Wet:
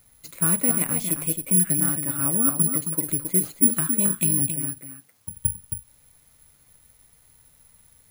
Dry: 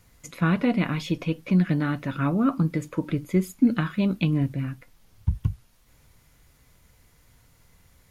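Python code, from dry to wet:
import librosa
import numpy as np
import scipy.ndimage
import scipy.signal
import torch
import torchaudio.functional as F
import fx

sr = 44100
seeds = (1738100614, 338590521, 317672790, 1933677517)

p1 = fx.highpass(x, sr, hz=210.0, slope=12, at=(4.51, 5.37))
p2 = p1 + fx.echo_single(p1, sr, ms=270, db=-7.0, dry=0)
p3 = (np.kron(p2[::4], np.eye(4)[0]) * 4)[:len(p2)]
y = p3 * librosa.db_to_amplitude(-5.5)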